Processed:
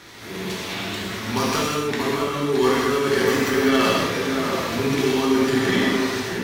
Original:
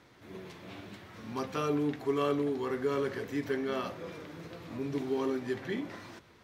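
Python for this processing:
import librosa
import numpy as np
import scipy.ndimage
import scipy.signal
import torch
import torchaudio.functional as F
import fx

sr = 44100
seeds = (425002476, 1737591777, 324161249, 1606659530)

p1 = fx.tracing_dist(x, sr, depth_ms=0.06)
p2 = fx.high_shelf(p1, sr, hz=2100.0, db=11.0)
p3 = fx.over_compress(p2, sr, threshold_db=-32.0, ratio=-0.5)
p4 = p3 + fx.echo_alternate(p3, sr, ms=629, hz=1900.0, feedback_pct=65, wet_db=-5.5, dry=0)
p5 = fx.rev_gated(p4, sr, seeds[0], gate_ms=230, shape='flat', drr_db=-4.0)
y = F.gain(torch.from_numpy(p5), 8.0).numpy()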